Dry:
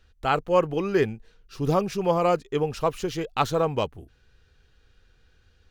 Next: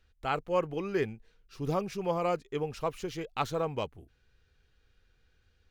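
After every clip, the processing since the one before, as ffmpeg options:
ffmpeg -i in.wav -af "equalizer=frequency=2200:width=5:gain=4,volume=-8dB" out.wav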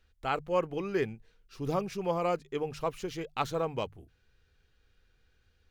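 ffmpeg -i in.wav -af "bandreject=frequency=50:width_type=h:width=6,bandreject=frequency=100:width_type=h:width=6,bandreject=frequency=150:width_type=h:width=6" out.wav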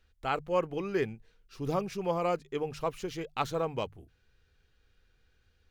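ffmpeg -i in.wav -af anull out.wav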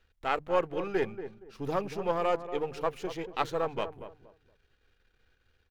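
ffmpeg -i in.wav -filter_complex "[0:a]aeval=exprs='if(lt(val(0),0),0.447*val(0),val(0))':channel_layout=same,bass=frequency=250:gain=-5,treble=frequency=4000:gain=-6,asplit=2[link_01][link_02];[link_02]adelay=234,lowpass=frequency=1000:poles=1,volume=-10dB,asplit=2[link_03][link_04];[link_04]adelay=234,lowpass=frequency=1000:poles=1,volume=0.27,asplit=2[link_05][link_06];[link_06]adelay=234,lowpass=frequency=1000:poles=1,volume=0.27[link_07];[link_03][link_05][link_07]amix=inputs=3:normalize=0[link_08];[link_01][link_08]amix=inputs=2:normalize=0,volume=4dB" out.wav

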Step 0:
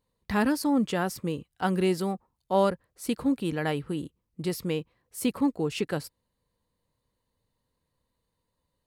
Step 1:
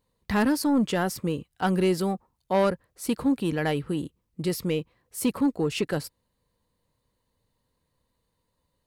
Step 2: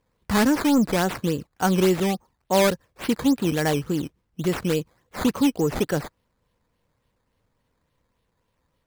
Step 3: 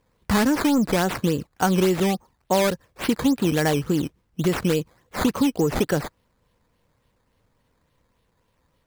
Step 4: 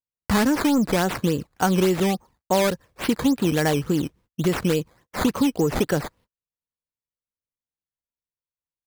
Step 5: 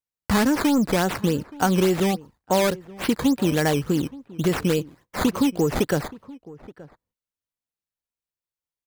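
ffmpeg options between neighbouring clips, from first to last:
ffmpeg -i in.wav -af "asoftclip=type=tanh:threshold=-18dB,volume=3.5dB" out.wav
ffmpeg -i in.wav -af "acrusher=samples=11:mix=1:aa=0.000001:lfo=1:lforange=11:lforate=3.5,volume=3.5dB" out.wav
ffmpeg -i in.wav -af "acompressor=threshold=-21dB:ratio=6,volume=4.5dB" out.wav
ffmpeg -i in.wav -af "agate=range=-38dB:threshold=-51dB:ratio=16:detection=peak" out.wav
ffmpeg -i in.wav -filter_complex "[0:a]asplit=2[link_01][link_02];[link_02]adelay=874.6,volume=-20dB,highshelf=frequency=4000:gain=-19.7[link_03];[link_01][link_03]amix=inputs=2:normalize=0" out.wav

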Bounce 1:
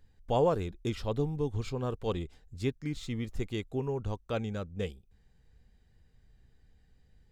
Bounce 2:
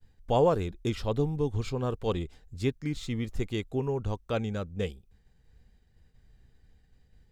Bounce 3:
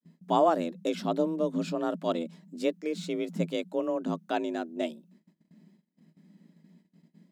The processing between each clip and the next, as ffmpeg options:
ffmpeg -i in.wav -af "agate=range=-33dB:threshold=-59dB:ratio=3:detection=peak,volume=3dB" out.wav
ffmpeg -i in.wav -af "afreqshift=160,agate=range=-19dB:threshold=-59dB:ratio=16:detection=peak" out.wav

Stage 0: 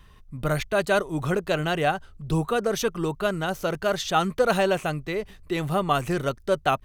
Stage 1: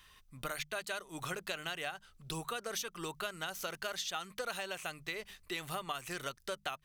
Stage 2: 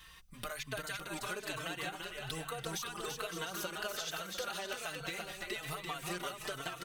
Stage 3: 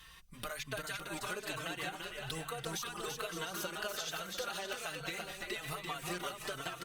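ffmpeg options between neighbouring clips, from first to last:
ffmpeg -i in.wav -af "tiltshelf=frequency=970:gain=-9.5,acompressor=threshold=-29dB:ratio=10,bandreject=frequency=50:width_type=h:width=6,bandreject=frequency=100:width_type=h:width=6,bandreject=frequency=150:width_type=h:width=6,bandreject=frequency=200:width_type=h:width=6,volume=-6.5dB" out.wav
ffmpeg -i in.wav -filter_complex "[0:a]acompressor=threshold=-43dB:ratio=6,aecho=1:1:340|561|704.6|798|858.7:0.631|0.398|0.251|0.158|0.1,asplit=2[link_01][link_02];[link_02]adelay=4,afreqshift=1.2[link_03];[link_01][link_03]amix=inputs=2:normalize=1,volume=8dB" out.wav
ffmpeg -i in.wav -ar 48000 -c:a libopus -b:a 48k out.opus

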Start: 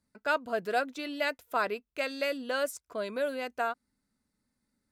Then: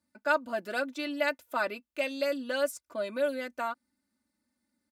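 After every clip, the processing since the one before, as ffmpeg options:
ffmpeg -i in.wav -af "highpass=100,aecho=1:1:3.4:0.87,volume=-2.5dB" out.wav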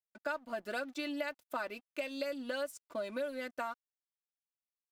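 ffmpeg -i in.wav -af "acompressor=threshold=-34dB:ratio=6,aeval=exprs='sgn(val(0))*max(abs(val(0))-0.001,0)':channel_layout=same" out.wav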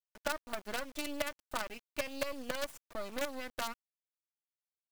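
ffmpeg -i in.wav -af "acrusher=bits=6:dc=4:mix=0:aa=0.000001,volume=1.5dB" out.wav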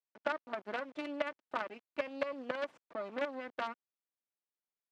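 ffmpeg -i in.wav -filter_complex "[0:a]asplit=2[link_01][link_02];[link_02]adynamicsmooth=sensitivity=6:basefreq=1200,volume=-2dB[link_03];[link_01][link_03]amix=inputs=2:normalize=0,highpass=230,lowpass=2700,volume=-3dB" out.wav

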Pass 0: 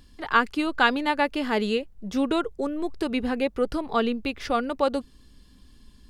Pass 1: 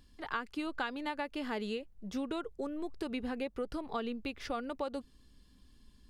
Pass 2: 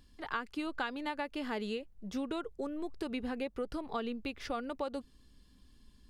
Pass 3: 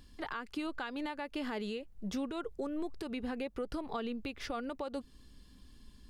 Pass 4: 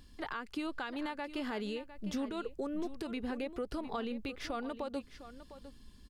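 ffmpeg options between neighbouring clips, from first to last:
ffmpeg -i in.wav -af "acompressor=threshold=-24dB:ratio=6,volume=-8.5dB" out.wav
ffmpeg -i in.wav -af anull out.wav
ffmpeg -i in.wav -af "alimiter=level_in=9dB:limit=-24dB:level=0:latency=1:release=221,volume=-9dB,volume=4.5dB" out.wav
ffmpeg -i in.wav -af "aecho=1:1:705:0.211" out.wav

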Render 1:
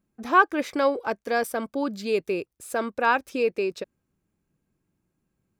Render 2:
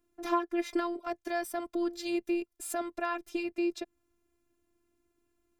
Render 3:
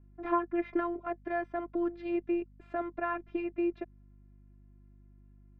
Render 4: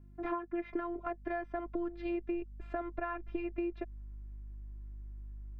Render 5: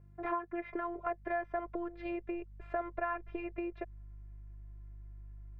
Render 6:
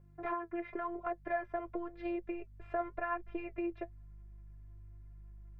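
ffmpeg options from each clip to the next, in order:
ffmpeg -i in.wav -filter_complex "[0:a]acrossover=split=230[link_01][link_02];[link_02]acompressor=threshold=-37dB:ratio=2.5[link_03];[link_01][link_03]amix=inputs=2:normalize=0,afftfilt=real='hypot(re,im)*cos(PI*b)':imag='0':win_size=512:overlap=0.75,volume=5.5dB" out.wav
ffmpeg -i in.wav -af "aeval=exprs='val(0)+0.00158*(sin(2*PI*50*n/s)+sin(2*PI*2*50*n/s)/2+sin(2*PI*3*50*n/s)/3+sin(2*PI*4*50*n/s)/4+sin(2*PI*5*50*n/s)/5)':channel_layout=same,lowpass=frequency=2200:width=0.5412,lowpass=frequency=2200:width=1.3066" out.wav
ffmpeg -i in.wav -af "asubboost=boost=7.5:cutoff=58,acompressor=threshold=-35dB:ratio=6,volume=2.5dB" out.wav
ffmpeg -i in.wav -af "equalizer=frequency=125:width_type=o:width=1:gain=10,equalizer=frequency=250:width_type=o:width=1:gain=-9,equalizer=frequency=500:width_type=o:width=1:gain=11,equalizer=frequency=1000:width_type=o:width=1:gain=5,equalizer=frequency=2000:width_type=o:width=1:gain=7,volume=-5dB" out.wav
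ffmpeg -i in.wav -af "flanger=delay=5.5:depth=3.6:regen=52:speed=0.93:shape=sinusoidal,volume=3dB" out.wav

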